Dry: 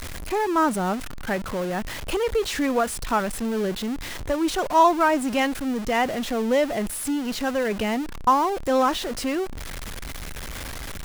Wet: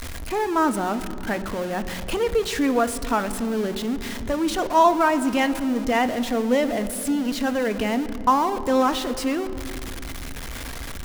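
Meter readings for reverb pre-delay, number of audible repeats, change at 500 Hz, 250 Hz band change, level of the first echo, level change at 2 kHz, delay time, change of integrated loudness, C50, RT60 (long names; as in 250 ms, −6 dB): 3 ms, no echo audible, +0.5 dB, +2.5 dB, no echo audible, +0.5 dB, no echo audible, +1.0 dB, 13.5 dB, 2.9 s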